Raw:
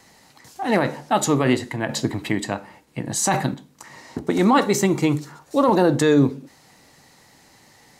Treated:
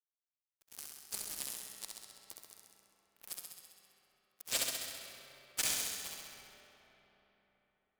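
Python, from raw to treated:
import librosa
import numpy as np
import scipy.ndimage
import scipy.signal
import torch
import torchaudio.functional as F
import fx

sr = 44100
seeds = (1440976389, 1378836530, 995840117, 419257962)

y = fx.bin_compress(x, sr, power=0.6)
y = scipy.signal.sosfilt(scipy.signal.butter(4, 1100.0, 'highpass', fs=sr, output='sos'), y)
y = fx.spec_gate(y, sr, threshold_db=-30, keep='weak')
y = fx.fuzz(y, sr, gain_db=35.0, gate_db=-40.0)
y = fx.room_flutter(y, sr, wall_m=11.3, rt60_s=1.2)
y = fx.rev_freeverb(y, sr, rt60_s=4.2, hf_ratio=0.6, predelay_ms=40, drr_db=6.0)
y = y * 10.0 ** (-7.5 / 20.0)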